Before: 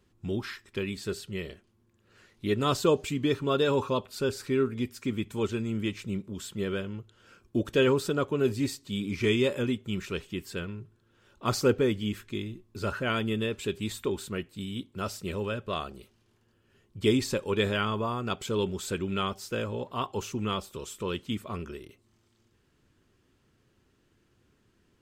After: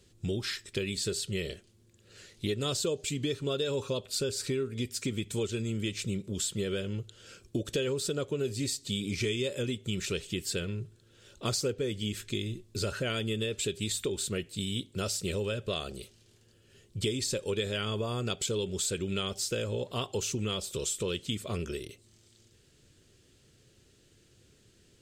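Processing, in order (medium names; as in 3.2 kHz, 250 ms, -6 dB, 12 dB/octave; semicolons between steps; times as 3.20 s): graphic EQ 125/250/500/1000/4000/8000 Hz +3/-4/+5/-10/+6/+10 dB; compression 6:1, threshold -33 dBFS, peak gain reduction 15.5 dB; trim +4 dB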